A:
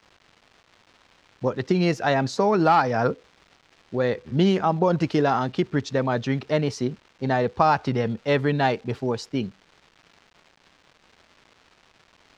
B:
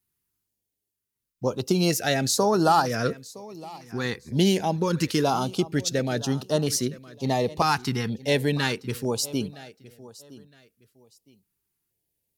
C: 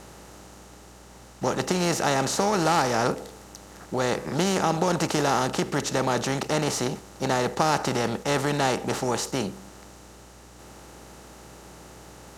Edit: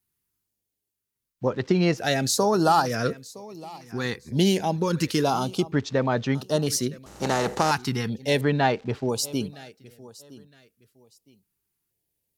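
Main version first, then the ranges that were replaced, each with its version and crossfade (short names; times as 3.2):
B
1.45–2.02 from A, crossfade 0.10 s
5.72–6.35 from A
7.06–7.71 from C
8.41–9.09 from A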